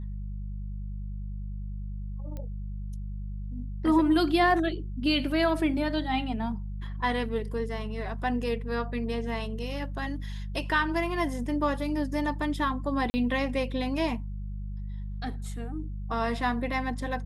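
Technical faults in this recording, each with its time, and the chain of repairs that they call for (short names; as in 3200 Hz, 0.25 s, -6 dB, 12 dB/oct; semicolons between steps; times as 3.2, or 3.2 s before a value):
hum 50 Hz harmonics 4 -35 dBFS
2.37 pop -26 dBFS
13.1–13.14 gap 40 ms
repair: de-click; de-hum 50 Hz, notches 4; interpolate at 13.1, 40 ms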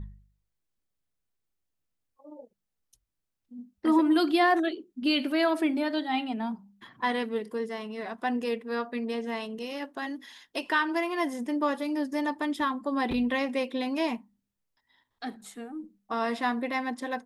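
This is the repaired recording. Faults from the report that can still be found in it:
none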